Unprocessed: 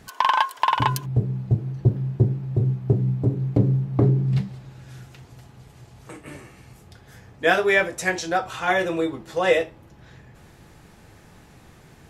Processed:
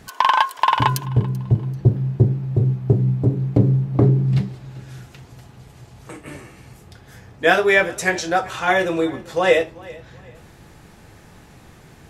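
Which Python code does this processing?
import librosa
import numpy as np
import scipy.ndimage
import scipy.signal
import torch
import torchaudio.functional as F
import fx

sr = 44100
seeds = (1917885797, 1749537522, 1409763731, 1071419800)

y = fx.echo_feedback(x, sr, ms=387, feedback_pct=31, wet_db=-21.5)
y = y * librosa.db_to_amplitude(3.5)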